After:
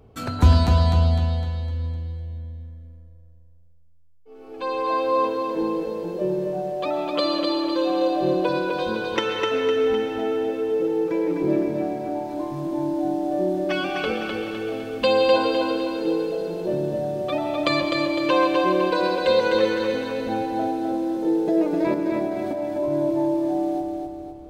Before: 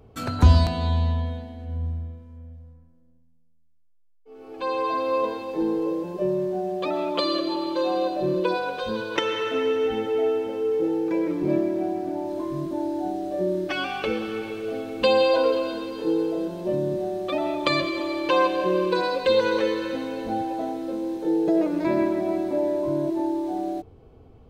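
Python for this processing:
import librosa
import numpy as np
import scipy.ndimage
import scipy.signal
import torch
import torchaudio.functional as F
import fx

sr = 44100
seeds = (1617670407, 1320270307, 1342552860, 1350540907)

p1 = fx.over_compress(x, sr, threshold_db=-27.0, ratio=-1.0, at=(21.94, 22.92))
y = p1 + fx.echo_feedback(p1, sr, ms=254, feedback_pct=48, wet_db=-4, dry=0)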